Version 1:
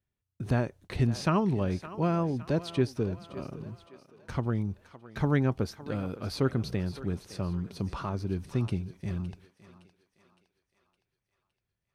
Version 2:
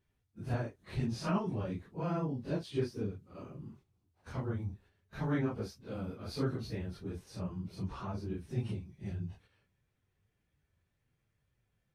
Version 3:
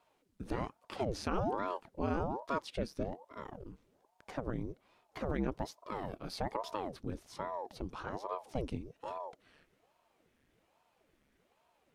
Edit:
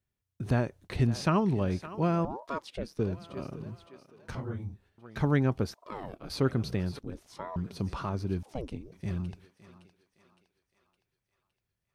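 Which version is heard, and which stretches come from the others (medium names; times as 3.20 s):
1
2.25–2.99 s: from 3
4.35–4.98 s: from 2
5.74–6.30 s: from 3
6.99–7.56 s: from 3
8.43–8.92 s: from 3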